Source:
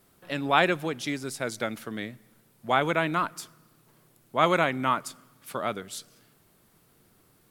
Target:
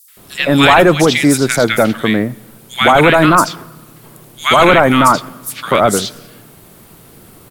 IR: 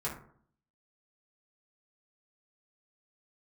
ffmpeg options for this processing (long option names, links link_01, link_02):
-filter_complex "[0:a]acrossover=split=1600|5300[link_01][link_02][link_03];[link_02]adelay=80[link_04];[link_01]adelay=170[link_05];[link_05][link_04][link_03]amix=inputs=3:normalize=0,apsyclip=24dB,volume=-2.5dB"